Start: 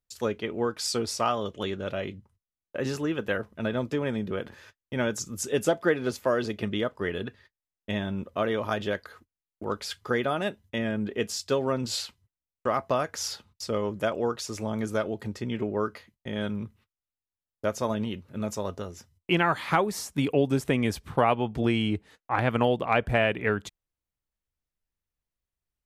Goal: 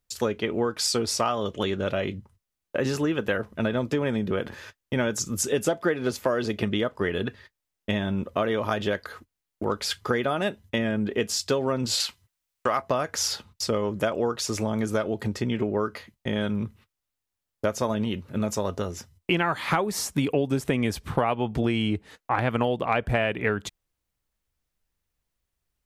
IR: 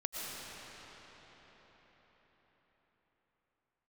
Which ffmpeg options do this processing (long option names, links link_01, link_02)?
-filter_complex "[0:a]asettb=1/sr,asplit=3[link_01][link_02][link_03];[link_01]atrim=end=12.004[link_04];[link_02]atrim=start=12:end=12.82,asetpts=PTS-STARTPTS,afade=type=in:duration=0.004:curve=qsin,afade=type=out:start_time=0.816:duration=0.004:curve=qsin,tiltshelf=frequency=660:gain=-5[link_05];[link_03]atrim=start=12.816[link_06];[link_04][link_05]acrossfade=duration=0.004:curve1=hsin:curve2=qsin[link_07];[link_07][link_06]acrossfade=duration=0.004:curve1=qsin:curve2=hsin,acompressor=threshold=-31dB:ratio=3,volume=8dB"